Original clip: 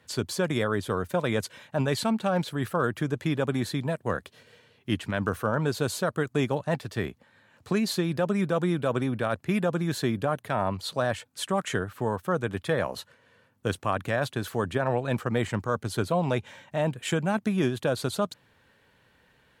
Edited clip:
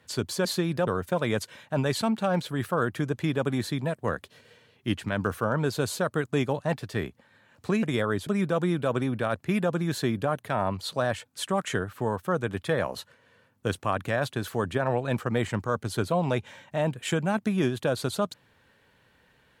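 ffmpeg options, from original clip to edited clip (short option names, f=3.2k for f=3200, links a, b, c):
-filter_complex "[0:a]asplit=5[a][b][c][d][e];[a]atrim=end=0.452[f];[b]atrim=start=7.848:end=8.272[g];[c]atrim=start=0.888:end=7.852[h];[d]atrim=start=0.448:end=0.892[i];[e]atrim=start=8.268[j];[f][g]acrossfade=d=0.004:c1=hsin:c2=hsin[k];[k][h]acrossfade=d=0.004:c1=hsin:c2=hsin[l];[l][i]acrossfade=d=0.004:c1=hsin:c2=hsin[m];[m][j]acrossfade=d=0.004:c1=hsin:c2=hsin"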